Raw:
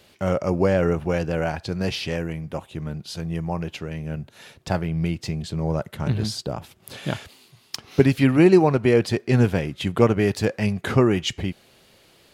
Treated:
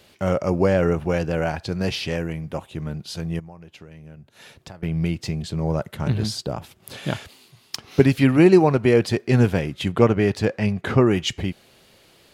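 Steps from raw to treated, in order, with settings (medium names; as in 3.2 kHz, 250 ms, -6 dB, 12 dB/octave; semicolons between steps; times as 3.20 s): 3.39–4.83 s: compression 6:1, threshold -41 dBFS, peak gain reduction 21.5 dB; 9.88–11.06 s: treble shelf 10 kHz -> 5.3 kHz -11.5 dB; trim +1 dB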